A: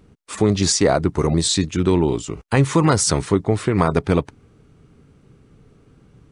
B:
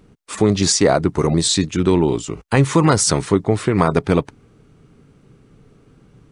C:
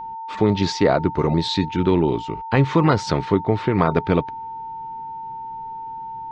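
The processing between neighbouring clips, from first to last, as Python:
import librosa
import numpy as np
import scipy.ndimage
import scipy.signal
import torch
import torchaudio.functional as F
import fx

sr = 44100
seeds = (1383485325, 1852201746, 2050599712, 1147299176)

y1 = fx.peak_eq(x, sr, hz=72.0, db=-6.5, octaves=0.64)
y1 = y1 * 10.0 ** (2.0 / 20.0)
y2 = scipy.signal.sosfilt(scipy.signal.butter(4, 4200.0, 'lowpass', fs=sr, output='sos'), y1)
y2 = y2 + 10.0 ** (-27.0 / 20.0) * np.sin(2.0 * np.pi * 900.0 * np.arange(len(y2)) / sr)
y2 = y2 * 10.0 ** (-2.5 / 20.0)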